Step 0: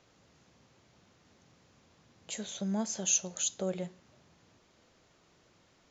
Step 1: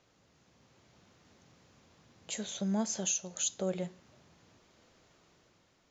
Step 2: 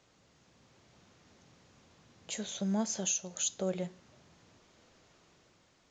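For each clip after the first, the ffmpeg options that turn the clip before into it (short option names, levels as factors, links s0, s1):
-af "alimiter=limit=0.0794:level=0:latency=1:release=359,dynaudnorm=f=100:g=13:m=1.68,volume=0.668"
-ar 16000 -c:a pcm_alaw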